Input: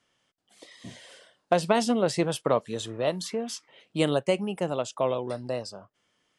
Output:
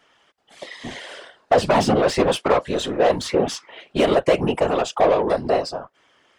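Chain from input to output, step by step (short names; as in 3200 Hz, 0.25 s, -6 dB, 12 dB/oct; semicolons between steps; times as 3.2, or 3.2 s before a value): overdrive pedal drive 23 dB, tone 1500 Hz, clips at -8.5 dBFS; whisperiser; gain +2 dB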